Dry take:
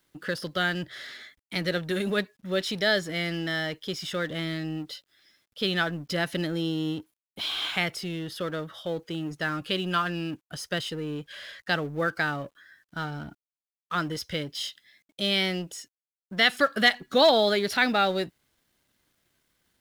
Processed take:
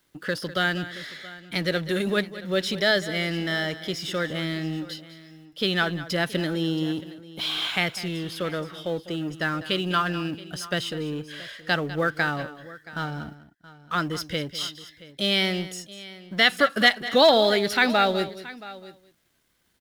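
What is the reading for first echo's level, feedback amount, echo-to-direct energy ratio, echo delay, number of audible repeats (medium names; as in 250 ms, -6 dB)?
-15.0 dB, no regular repeats, -13.5 dB, 200 ms, 3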